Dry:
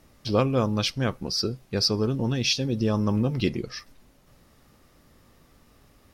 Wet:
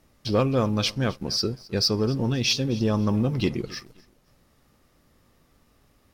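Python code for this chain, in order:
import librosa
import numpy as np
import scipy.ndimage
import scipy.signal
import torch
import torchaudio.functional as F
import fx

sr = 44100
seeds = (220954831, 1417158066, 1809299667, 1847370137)

y = fx.echo_feedback(x, sr, ms=262, feedback_pct=30, wet_db=-20.5)
y = fx.leveller(y, sr, passes=1)
y = F.gain(torch.from_numpy(y), -2.5).numpy()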